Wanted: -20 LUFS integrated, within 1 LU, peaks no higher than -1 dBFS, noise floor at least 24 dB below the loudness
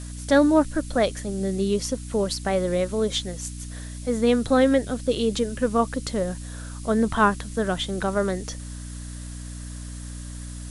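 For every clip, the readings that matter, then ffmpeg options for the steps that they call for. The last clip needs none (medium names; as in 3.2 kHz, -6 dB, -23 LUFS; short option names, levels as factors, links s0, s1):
hum 60 Hz; highest harmonic 300 Hz; hum level -33 dBFS; noise floor -36 dBFS; noise floor target -48 dBFS; loudness -24.0 LUFS; peak level -6.5 dBFS; loudness target -20.0 LUFS
-> -af "bandreject=f=60:t=h:w=4,bandreject=f=120:t=h:w=4,bandreject=f=180:t=h:w=4,bandreject=f=240:t=h:w=4,bandreject=f=300:t=h:w=4"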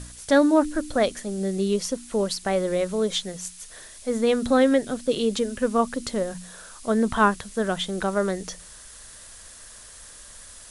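hum not found; noise floor -45 dBFS; noise floor target -48 dBFS
-> -af "afftdn=nr=6:nf=-45"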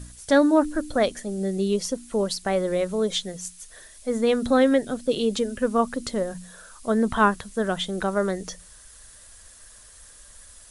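noise floor -49 dBFS; loudness -24.0 LUFS; peak level -6.5 dBFS; loudness target -20.0 LUFS
-> -af "volume=1.58"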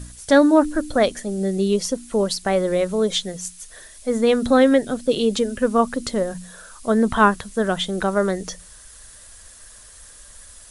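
loudness -20.0 LUFS; peak level -3.0 dBFS; noise floor -45 dBFS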